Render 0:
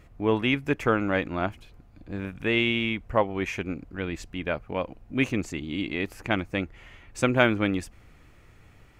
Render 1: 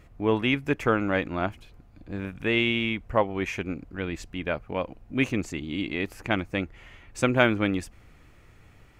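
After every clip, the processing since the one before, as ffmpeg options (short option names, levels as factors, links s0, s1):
-af anull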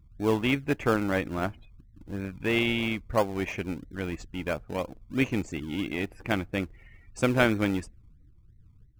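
-filter_complex "[0:a]afftdn=nr=36:nf=-47,asplit=2[s0][s1];[s1]acrusher=samples=31:mix=1:aa=0.000001:lfo=1:lforange=18.6:lforate=3,volume=0.335[s2];[s0][s2]amix=inputs=2:normalize=0,volume=0.708"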